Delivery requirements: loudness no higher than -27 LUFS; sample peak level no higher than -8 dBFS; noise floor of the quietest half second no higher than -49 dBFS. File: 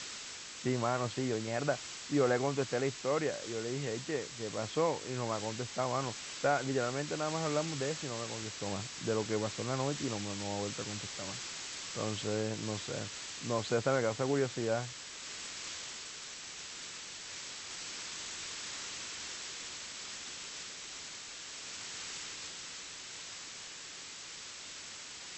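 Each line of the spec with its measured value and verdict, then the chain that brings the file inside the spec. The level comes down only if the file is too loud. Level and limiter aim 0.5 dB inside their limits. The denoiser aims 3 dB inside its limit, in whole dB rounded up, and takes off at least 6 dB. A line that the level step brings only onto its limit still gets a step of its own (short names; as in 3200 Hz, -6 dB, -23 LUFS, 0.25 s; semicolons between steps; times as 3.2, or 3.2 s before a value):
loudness -36.5 LUFS: OK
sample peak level -17.0 dBFS: OK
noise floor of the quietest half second -47 dBFS: fail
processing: denoiser 6 dB, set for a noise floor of -47 dBFS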